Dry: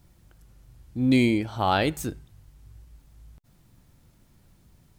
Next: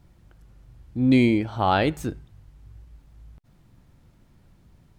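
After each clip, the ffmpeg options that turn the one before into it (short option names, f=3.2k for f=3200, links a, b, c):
-af "highshelf=f=5k:g=-12,volume=2.5dB"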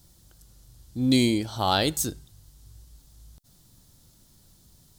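-af "aexciter=amount=8:drive=4.5:freq=3.5k,volume=-3.5dB"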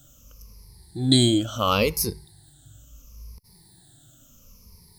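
-af "afftfilt=real='re*pow(10,20/40*sin(2*PI*(0.85*log(max(b,1)*sr/1024/100)/log(2)-(-0.72)*(pts-256)/sr)))':imag='im*pow(10,20/40*sin(2*PI*(0.85*log(max(b,1)*sr/1024/100)/log(2)-(-0.72)*(pts-256)/sr)))':win_size=1024:overlap=0.75"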